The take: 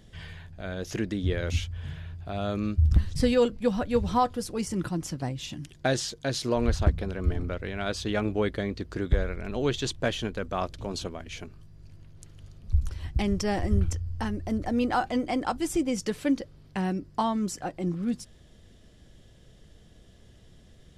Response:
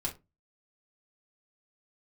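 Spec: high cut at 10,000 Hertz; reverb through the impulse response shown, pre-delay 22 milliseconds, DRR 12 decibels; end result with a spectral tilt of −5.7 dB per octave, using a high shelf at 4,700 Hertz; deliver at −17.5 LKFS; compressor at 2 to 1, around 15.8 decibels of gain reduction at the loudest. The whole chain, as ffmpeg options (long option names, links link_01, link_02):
-filter_complex "[0:a]lowpass=10000,highshelf=frequency=4700:gain=-4,acompressor=threshold=-47dB:ratio=2,asplit=2[link_01][link_02];[1:a]atrim=start_sample=2205,adelay=22[link_03];[link_02][link_03]afir=irnorm=-1:irlink=0,volume=-14dB[link_04];[link_01][link_04]amix=inputs=2:normalize=0,volume=24dB"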